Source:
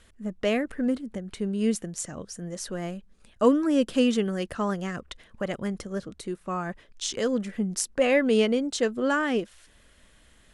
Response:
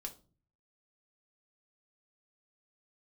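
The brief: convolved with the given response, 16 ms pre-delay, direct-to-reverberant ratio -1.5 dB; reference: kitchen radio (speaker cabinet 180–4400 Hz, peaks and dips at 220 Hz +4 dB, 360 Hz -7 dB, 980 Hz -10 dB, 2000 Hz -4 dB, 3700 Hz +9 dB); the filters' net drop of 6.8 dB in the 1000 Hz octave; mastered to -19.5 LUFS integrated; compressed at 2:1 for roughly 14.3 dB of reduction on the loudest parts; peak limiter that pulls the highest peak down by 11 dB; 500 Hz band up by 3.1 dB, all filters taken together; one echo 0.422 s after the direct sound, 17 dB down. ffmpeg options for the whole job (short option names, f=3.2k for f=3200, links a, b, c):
-filter_complex "[0:a]equalizer=f=500:t=o:g=7,equalizer=f=1k:t=o:g=-8,acompressor=threshold=-38dB:ratio=2,alimiter=level_in=2.5dB:limit=-24dB:level=0:latency=1,volume=-2.5dB,aecho=1:1:422:0.141,asplit=2[a][b];[1:a]atrim=start_sample=2205,adelay=16[c];[b][c]afir=irnorm=-1:irlink=0,volume=4.5dB[d];[a][d]amix=inputs=2:normalize=0,highpass=180,equalizer=f=220:t=q:w=4:g=4,equalizer=f=360:t=q:w=4:g=-7,equalizer=f=980:t=q:w=4:g=-10,equalizer=f=2k:t=q:w=4:g=-4,equalizer=f=3.7k:t=q:w=4:g=9,lowpass=f=4.4k:w=0.5412,lowpass=f=4.4k:w=1.3066,volume=13.5dB"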